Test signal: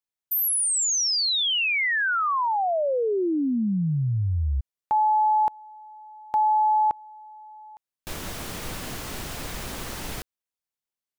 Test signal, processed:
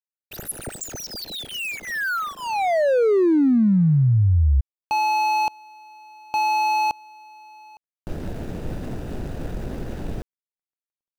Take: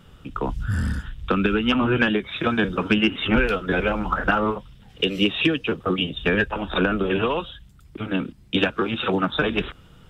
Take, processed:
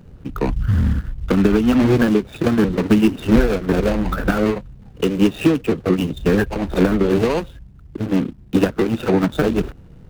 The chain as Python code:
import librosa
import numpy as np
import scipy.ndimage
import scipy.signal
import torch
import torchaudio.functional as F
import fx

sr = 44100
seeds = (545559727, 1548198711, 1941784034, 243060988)

y = scipy.signal.medfilt(x, 41)
y = y * 10.0 ** (7.5 / 20.0)